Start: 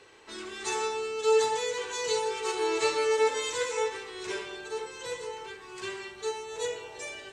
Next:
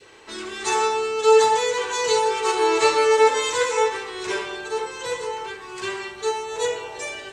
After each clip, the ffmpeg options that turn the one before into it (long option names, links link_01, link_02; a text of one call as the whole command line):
ffmpeg -i in.wav -af "adynamicequalizer=threshold=0.00708:dfrequency=990:dqfactor=0.95:tfrequency=990:tqfactor=0.95:attack=5:release=100:ratio=0.375:range=2.5:mode=boostabove:tftype=bell,volume=7dB" out.wav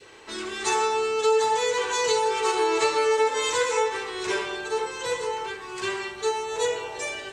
ffmpeg -i in.wav -af "acompressor=threshold=-20dB:ratio=3" out.wav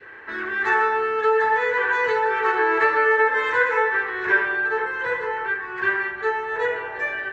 ffmpeg -i in.wav -af "lowpass=frequency=1700:width_type=q:width=8" out.wav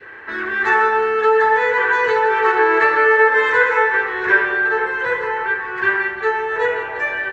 ffmpeg -i in.wav -af "aecho=1:1:173|346|519|692|865|1038:0.211|0.127|0.0761|0.0457|0.0274|0.0164,volume=4.5dB" out.wav